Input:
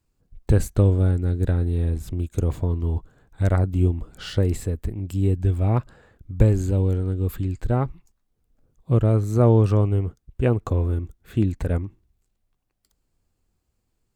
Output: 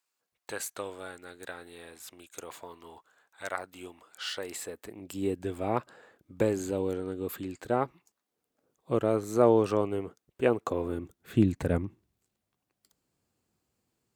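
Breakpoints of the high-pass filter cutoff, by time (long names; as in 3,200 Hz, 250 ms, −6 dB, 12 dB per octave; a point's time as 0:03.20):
0:04.30 1,000 Hz
0:05.23 350 Hz
0:10.68 350 Hz
0:11.40 140 Hz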